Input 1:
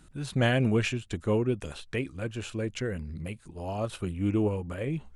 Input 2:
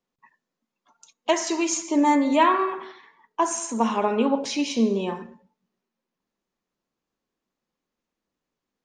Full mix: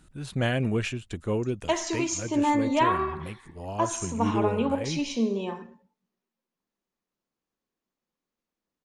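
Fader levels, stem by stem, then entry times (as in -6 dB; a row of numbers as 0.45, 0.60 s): -1.5, -4.5 dB; 0.00, 0.40 s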